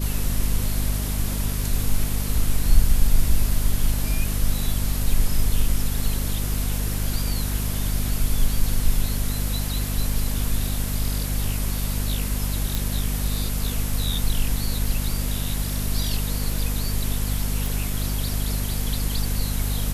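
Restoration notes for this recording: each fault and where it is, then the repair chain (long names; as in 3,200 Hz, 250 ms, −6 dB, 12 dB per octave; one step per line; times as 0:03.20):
mains hum 50 Hz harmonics 5 −26 dBFS
0:12.75: click
0:17.66: click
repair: click removal
hum removal 50 Hz, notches 5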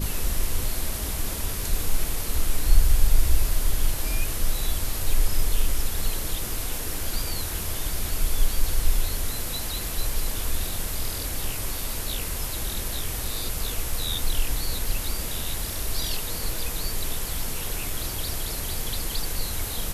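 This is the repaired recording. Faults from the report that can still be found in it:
none of them is left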